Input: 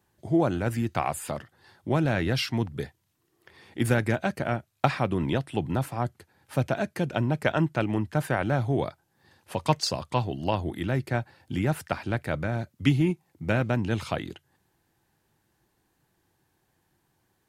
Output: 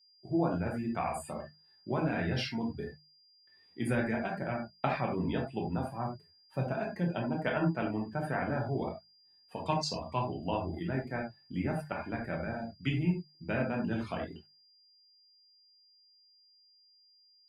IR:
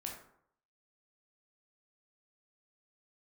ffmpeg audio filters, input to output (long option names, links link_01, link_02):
-filter_complex "[0:a]flanger=delay=4.2:depth=1.1:regen=-44:speed=1.9:shape=sinusoidal,agate=range=-33dB:threshold=-60dB:ratio=3:detection=peak[link_01];[1:a]atrim=start_sample=2205,atrim=end_sample=4410[link_02];[link_01][link_02]afir=irnorm=-1:irlink=0,aeval=exprs='val(0)+0.00112*sin(2*PI*4800*n/s)':channel_layout=same,afftdn=noise_reduction=16:noise_floor=-46,bandreject=frequency=50:width_type=h:width=6,bandreject=frequency=100:width_type=h:width=6,bandreject=frequency=150:width_type=h:width=6,bandreject=frequency=200:width_type=h:width=6"